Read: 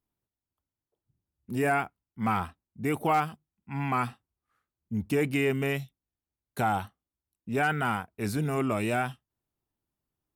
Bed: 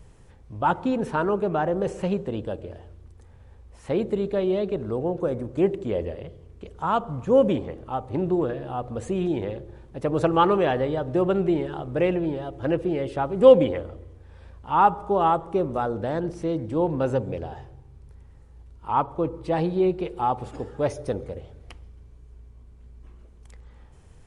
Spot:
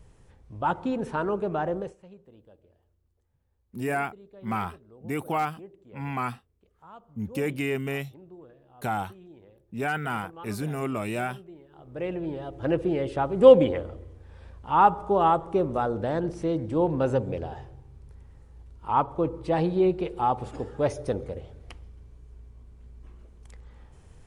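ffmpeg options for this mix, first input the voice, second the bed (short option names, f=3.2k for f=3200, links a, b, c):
-filter_complex "[0:a]adelay=2250,volume=-2dB[a];[1:a]volume=20dB,afade=t=out:st=1.73:d=0.23:silence=0.0944061,afade=t=in:st=11.7:d=1.1:silence=0.0630957[b];[a][b]amix=inputs=2:normalize=0"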